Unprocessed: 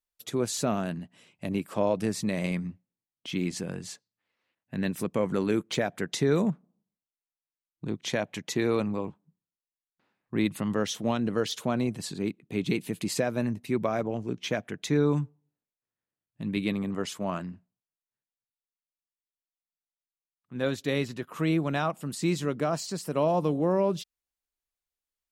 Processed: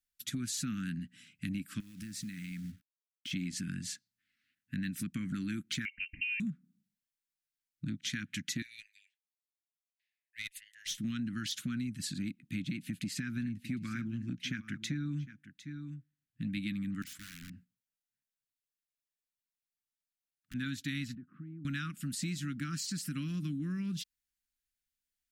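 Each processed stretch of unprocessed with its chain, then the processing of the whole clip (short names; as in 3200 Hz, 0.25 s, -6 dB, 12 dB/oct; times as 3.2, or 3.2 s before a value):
1.8–3.31 compressor 10:1, threshold -38 dBFS + companded quantiser 6-bit
5.85–6.4 fixed phaser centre 650 Hz, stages 4 + inverted band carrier 2900 Hz
8.62–10.98 steep high-pass 1800 Hz 72 dB/oct + tube stage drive 27 dB, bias 0.35 + upward expander, over -48 dBFS
12.62–16.44 high shelf 4500 Hz -8 dB + echo 0.754 s -16.5 dB
17.02–20.54 compressor 4:1, threshold -49 dBFS + sample leveller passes 1 + wrapped overs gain 41.5 dB
21.15–21.65 compressor, threshold -39 dBFS + Butterworth band-pass 330 Hz, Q 0.5 + air absorption 240 m
whole clip: elliptic band-stop 270–1500 Hz, stop band 40 dB; compressor, threshold -35 dBFS; gain +1.5 dB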